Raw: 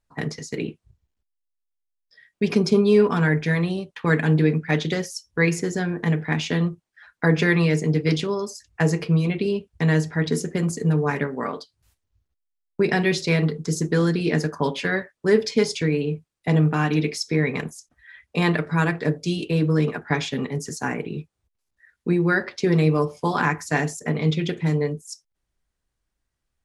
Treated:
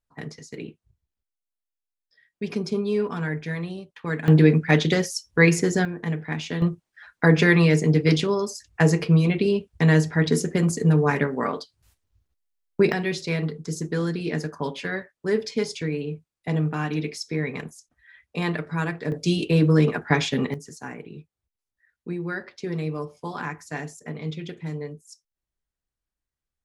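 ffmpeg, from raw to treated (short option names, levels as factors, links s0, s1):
-af "asetnsamples=n=441:p=0,asendcmd='4.28 volume volume 3.5dB;5.85 volume volume -5.5dB;6.62 volume volume 2dB;12.92 volume volume -5.5dB;19.12 volume volume 2.5dB;20.54 volume volume -10dB',volume=0.398"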